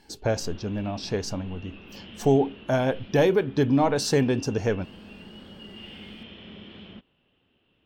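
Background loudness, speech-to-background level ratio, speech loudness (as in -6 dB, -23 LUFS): -44.5 LUFS, 19.5 dB, -25.0 LUFS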